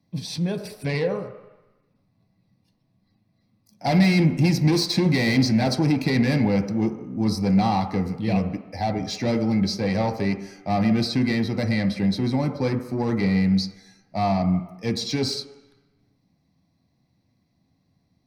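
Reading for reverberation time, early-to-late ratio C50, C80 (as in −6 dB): 1.0 s, 10.0 dB, 11.5 dB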